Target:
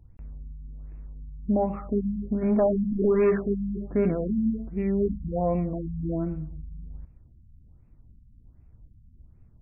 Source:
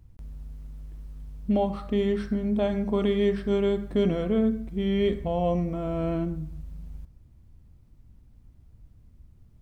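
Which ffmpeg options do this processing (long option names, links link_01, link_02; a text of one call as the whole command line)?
ffmpeg -i in.wav -filter_complex "[0:a]asplit=3[link_01][link_02][link_03];[link_01]afade=type=out:start_time=2.41:duration=0.02[link_04];[link_02]asplit=2[link_05][link_06];[link_06]highpass=frequency=720:poles=1,volume=21dB,asoftclip=type=tanh:threshold=-12.5dB[link_07];[link_05][link_07]amix=inputs=2:normalize=0,lowpass=frequency=1200:poles=1,volume=-6dB,afade=type=in:start_time=2.41:duration=0.02,afade=type=out:start_time=3.46:duration=0.02[link_08];[link_03]afade=type=in:start_time=3.46:duration=0.02[link_09];[link_04][link_08][link_09]amix=inputs=3:normalize=0,afftfilt=real='re*lt(b*sr/1024,240*pow(2800/240,0.5+0.5*sin(2*PI*1.3*pts/sr)))':imag='im*lt(b*sr/1024,240*pow(2800/240,0.5+0.5*sin(2*PI*1.3*pts/sr)))':win_size=1024:overlap=0.75" out.wav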